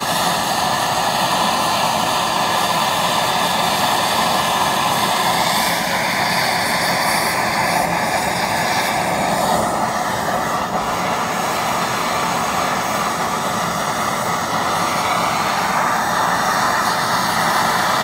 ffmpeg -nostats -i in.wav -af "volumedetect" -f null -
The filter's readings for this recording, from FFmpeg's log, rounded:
mean_volume: -18.1 dB
max_volume: -3.7 dB